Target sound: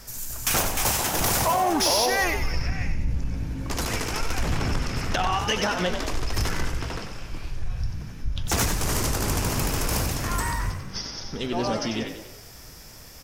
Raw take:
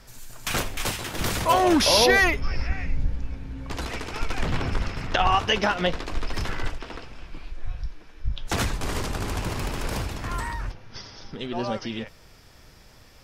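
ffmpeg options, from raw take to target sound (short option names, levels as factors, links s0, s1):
-filter_complex "[0:a]asettb=1/sr,asplit=3[s0][s1][s2];[s0]atrim=end=0.554[s3];[s1]atrim=start=0.55:end=2.24,asetpts=PTS-STARTPTS,afade=t=in:d=0.004:c=qsin,afade=t=out:st=1.686:d=0.004:c=qsin,equalizer=f=790:t=o:w=0.83:g=9[s4];[s2]atrim=start=2.236[s5];[s3][s4]acrossfade=d=0.004:c1=hsin:c2=qsin[s6];[s6][s5]acrossfade=d=0.004:c1=qsin:c2=hsin,acompressor=threshold=0.0708:ratio=6,aexciter=amount=3.1:drive=3.7:freq=5200,asoftclip=type=tanh:threshold=0.106,asplit=7[s7][s8][s9][s10][s11][s12][s13];[s8]adelay=93,afreqshift=48,volume=0.398[s14];[s9]adelay=186,afreqshift=96,volume=0.2[s15];[s10]adelay=279,afreqshift=144,volume=0.1[s16];[s11]adelay=372,afreqshift=192,volume=0.0495[s17];[s12]adelay=465,afreqshift=240,volume=0.0248[s18];[s13]adelay=558,afreqshift=288,volume=0.0124[s19];[s7][s14][s15][s16][s17][s18][s19]amix=inputs=7:normalize=0,volume=1.5"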